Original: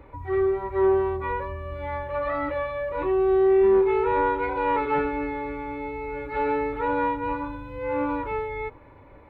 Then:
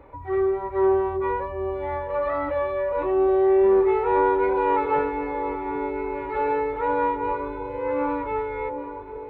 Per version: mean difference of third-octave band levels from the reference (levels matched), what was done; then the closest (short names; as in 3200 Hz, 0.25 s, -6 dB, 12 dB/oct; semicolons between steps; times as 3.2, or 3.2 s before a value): 3.0 dB: bell 680 Hz +7 dB 2.1 oct; on a send: echo with dull and thin repeats by turns 0.775 s, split 870 Hz, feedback 65%, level -8.5 dB; on the sum: gain -4 dB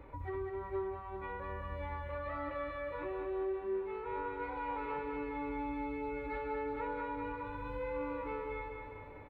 4.5 dB: compressor, threshold -33 dBFS, peak gain reduction 15.5 dB; doubler 20 ms -12 dB; on a send: feedback echo 0.202 s, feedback 57%, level -5 dB; on the sum: gain -5 dB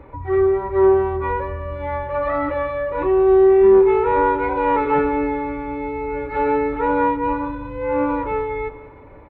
1.5 dB: high shelf 2900 Hz -10 dB; notches 50/100 Hz; on a send: feedback echo 0.184 s, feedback 40%, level -16 dB; on the sum: gain +6.5 dB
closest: third